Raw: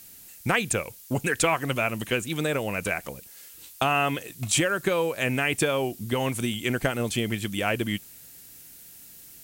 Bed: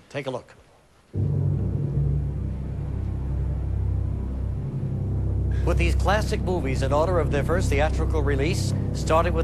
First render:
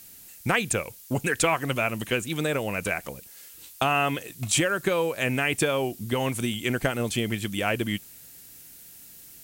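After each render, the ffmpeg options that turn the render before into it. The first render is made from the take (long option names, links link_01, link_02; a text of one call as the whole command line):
ffmpeg -i in.wav -af anull out.wav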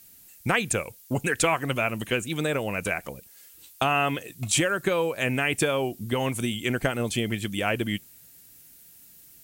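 ffmpeg -i in.wav -af "afftdn=noise_reduction=6:noise_floor=-48" out.wav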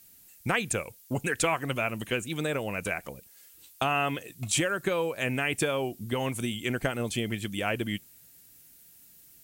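ffmpeg -i in.wav -af "volume=-3.5dB" out.wav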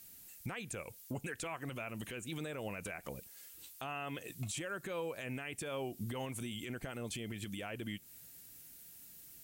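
ffmpeg -i in.wav -af "acompressor=threshold=-35dB:ratio=12,alimiter=level_in=7dB:limit=-24dB:level=0:latency=1:release=21,volume=-7dB" out.wav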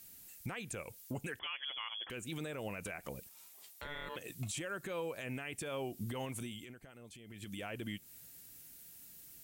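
ffmpeg -i in.wav -filter_complex "[0:a]asettb=1/sr,asplit=3[link_01][link_02][link_03];[link_01]atrim=end=1.394[link_04];[link_02]atrim=start=1.39:end=2.1,asetpts=PTS-STARTPTS,afade=type=in:duration=0.004:curve=qsin,afade=type=out:start_time=0.706:duration=0.004:curve=qsin,lowpass=frequency=3000:width_type=q:width=0.5098,lowpass=frequency=3000:width_type=q:width=0.6013,lowpass=frequency=3000:width_type=q:width=0.9,lowpass=frequency=3000:width_type=q:width=2.563,afreqshift=-3500[link_05];[link_03]atrim=start=2.096[link_06];[link_04][link_05]acrossfade=duration=0.004:curve1=hsin:curve2=qsin[link_07];[link_07][link_06]acrossfade=duration=0.004:curve1=qsin:curve2=hsin,asettb=1/sr,asplit=3[link_08][link_09][link_10];[link_08]atrim=end=3.294[link_11];[link_09]atrim=start=3.29:end=4.16,asetpts=PTS-STARTPTS,afade=type=in:duration=0.004:curve=qsin,afade=type=out:start_time=0.866:duration=0.004:curve=qsin,aeval=exprs='val(0)*sin(2*PI*730*n/s)':channel_layout=same[link_12];[link_10]atrim=start=4.156[link_13];[link_11][link_12]acrossfade=duration=0.004:curve1=hsin:curve2=qsin[link_14];[link_14][link_13]acrossfade=duration=0.004:curve1=qsin:curve2=hsin,asplit=3[link_15][link_16][link_17];[link_15]atrim=end=6.76,asetpts=PTS-STARTPTS,afade=type=out:start_time=6.38:duration=0.38:silence=0.237137[link_18];[link_16]atrim=start=6.76:end=7.25,asetpts=PTS-STARTPTS,volume=-12.5dB[link_19];[link_17]atrim=start=7.25,asetpts=PTS-STARTPTS,afade=type=in:duration=0.38:silence=0.237137[link_20];[link_18][link_19][link_20]concat=n=3:v=0:a=1" out.wav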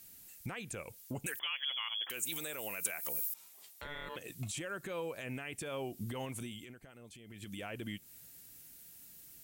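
ffmpeg -i in.wav -filter_complex "[0:a]asettb=1/sr,asplit=3[link_01][link_02][link_03];[link_01]atrim=end=1.264[link_04];[link_02]atrim=start=1.26:end=3.34,asetpts=PTS-STARTPTS,afade=type=in:duration=0.004:curve=qsin,afade=type=out:start_time=2.076:duration=0.004:curve=qsin,aemphasis=mode=production:type=riaa[link_05];[link_03]atrim=start=3.336[link_06];[link_04][link_05]acrossfade=duration=0.004:curve1=hsin:curve2=qsin[link_07];[link_07][link_06]acrossfade=duration=0.004:curve1=qsin:curve2=hsin" out.wav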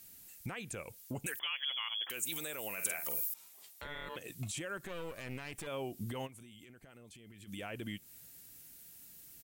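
ffmpeg -i in.wav -filter_complex "[0:a]asplit=3[link_01][link_02][link_03];[link_01]afade=type=out:start_time=2.77:duration=0.02[link_04];[link_02]asplit=2[link_05][link_06];[link_06]adelay=48,volume=-6.5dB[link_07];[link_05][link_07]amix=inputs=2:normalize=0,afade=type=in:start_time=2.77:duration=0.02,afade=type=out:start_time=3.23:duration=0.02[link_08];[link_03]afade=type=in:start_time=3.23:duration=0.02[link_09];[link_04][link_08][link_09]amix=inputs=3:normalize=0,asettb=1/sr,asplit=3[link_10][link_11][link_12];[link_10]atrim=end=4.774[link_13];[link_11]atrim=start=4.77:end=5.67,asetpts=PTS-STARTPTS,afade=type=in:duration=0.004:curve=qsin,afade=type=out:start_time=0.896:duration=0.004:curve=qsin,aeval=exprs='clip(val(0),-1,0.00266)':channel_layout=same[link_14];[link_12]atrim=start=5.666[link_15];[link_13][link_14]acrossfade=duration=0.004:curve1=hsin:curve2=qsin[link_16];[link_16][link_15]acrossfade=duration=0.004:curve1=qsin:curve2=hsin,asplit=3[link_17][link_18][link_19];[link_17]afade=type=out:start_time=6.26:duration=0.02[link_20];[link_18]acompressor=threshold=-50dB:ratio=10:attack=3.2:release=140:knee=1:detection=peak,afade=type=in:start_time=6.26:duration=0.02,afade=type=out:start_time=7.47:duration=0.02[link_21];[link_19]afade=type=in:start_time=7.47:duration=0.02[link_22];[link_20][link_21][link_22]amix=inputs=3:normalize=0" out.wav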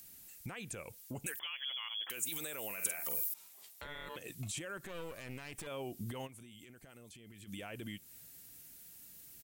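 ffmpeg -i in.wav -filter_complex "[0:a]acrossover=split=4700[link_01][link_02];[link_01]alimiter=level_in=10.5dB:limit=-24dB:level=0:latency=1:release=47,volume=-10.5dB[link_03];[link_02]acompressor=mode=upward:threshold=-57dB:ratio=2.5[link_04];[link_03][link_04]amix=inputs=2:normalize=0" out.wav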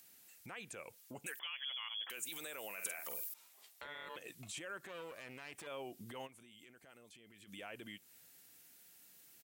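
ffmpeg -i in.wav -af "highpass=frequency=520:poles=1,highshelf=frequency=5100:gain=-8.5" out.wav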